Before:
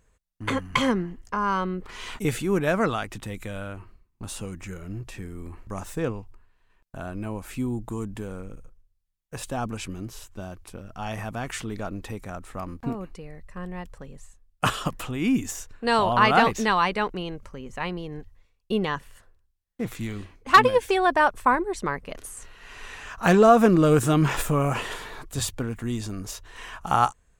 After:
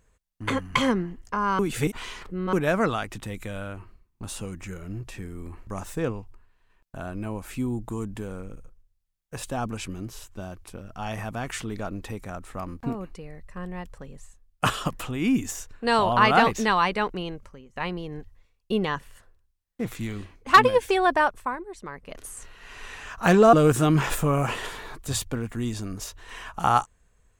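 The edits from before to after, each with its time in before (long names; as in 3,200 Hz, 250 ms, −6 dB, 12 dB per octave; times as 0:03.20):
0:01.59–0:02.53: reverse
0:17.28–0:17.76: fade out, to −23 dB
0:21.13–0:22.30: duck −10.5 dB, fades 0.38 s
0:23.53–0:23.80: remove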